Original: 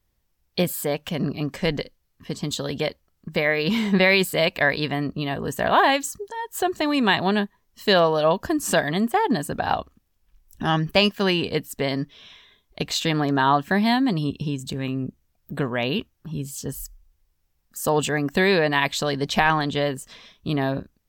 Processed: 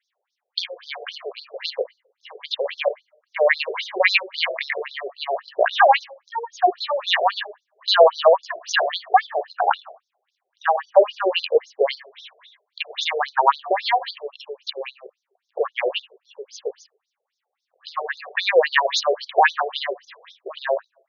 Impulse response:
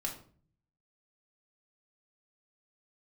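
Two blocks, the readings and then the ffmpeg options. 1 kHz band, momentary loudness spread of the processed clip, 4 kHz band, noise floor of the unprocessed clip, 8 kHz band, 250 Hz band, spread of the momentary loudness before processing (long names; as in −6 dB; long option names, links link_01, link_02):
+3.5 dB, 16 LU, +1.0 dB, −70 dBFS, −8.0 dB, below −15 dB, 14 LU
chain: -filter_complex "[0:a]acontrast=42,asplit=2[link_01][link_02];[1:a]atrim=start_sample=2205,lowpass=2900[link_03];[link_02][link_03]afir=irnorm=-1:irlink=0,volume=-8dB[link_04];[link_01][link_04]amix=inputs=2:normalize=0,afftfilt=real='re*between(b*sr/1024,520*pow(4900/520,0.5+0.5*sin(2*PI*3.7*pts/sr))/1.41,520*pow(4900/520,0.5+0.5*sin(2*PI*3.7*pts/sr))*1.41)':imag='im*between(b*sr/1024,520*pow(4900/520,0.5+0.5*sin(2*PI*3.7*pts/sr))/1.41,520*pow(4900/520,0.5+0.5*sin(2*PI*3.7*pts/sr))*1.41)':win_size=1024:overlap=0.75,volume=2dB"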